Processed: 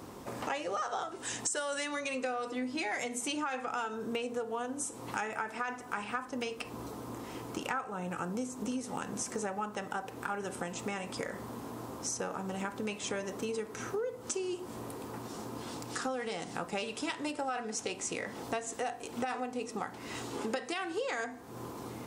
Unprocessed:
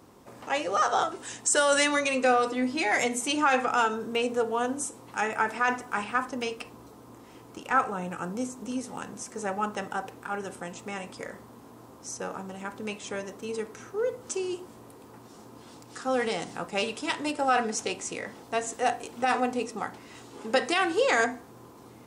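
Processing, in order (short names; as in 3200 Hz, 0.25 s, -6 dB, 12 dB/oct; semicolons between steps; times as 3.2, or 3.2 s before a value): compressor 8:1, threshold -40 dBFS, peak gain reduction 21.5 dB; gain +7 dB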